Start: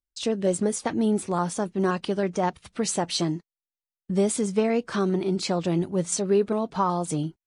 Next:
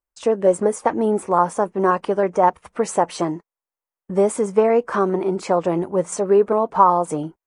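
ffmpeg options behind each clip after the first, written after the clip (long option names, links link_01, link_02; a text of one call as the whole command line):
ffmpeg -i in.wav -af "equalizer=frequency=125:width_type=o:width=1:gain=-5,equalizer=frequency=500:width_type=o:width=1:gain=8,equalizer=frequency=1000:width_type=o:width=1:gain=11,equalizer=frequency=2000:width_type=o:width=1:gain=3,equalizer=frequency=4000:width_type=o:width=1:gain=-11" out.wav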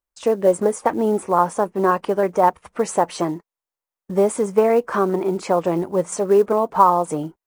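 ffmpeg -i in.wav -af "acrusher=bits=8:mode=log:mix=0:aa=0.000001" out.wav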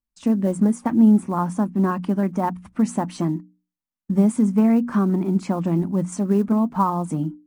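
ffmpeg -i in.wav -af "lowshelf=frequency=330:width_type=q:width=3:gain=10.5,bandreject=frequency=60:width_type=h:width=6,bandreject=frequency=120:width_type=h:width=6,bandreject=frequency=180:width_type=h:width=6,bandreject=frequency=240:width_type=h:width=6,bandreject=frequency=300:width_type=h:width=6,volume=-6.5dB" out.wav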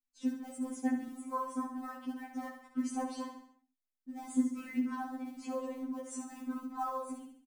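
ffmpeg -i in.wav -filter_complex "[0:a]asplit=2[link_01][link_02];[link_02]aecho=0:1:68|136|204|272|340:0.422|0.198|0.0932|0.0438|0.0206[link_03];[link_01][link_03]amix=inputs=2:normalize=0,afftfilt=real='re*3.46*eq(mod(b,12),0)':imag='im*3.46*eq(mod(b,12),0)':win_size=2048:overlap=0.75,volume=-9dB" out.wav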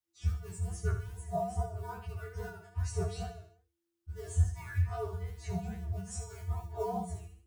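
ffmpeg -i in.wav -af "flanger=delay=17.5:depth=7:speed=2.4,afreqshift=-340,volume=5.5dB" out.wav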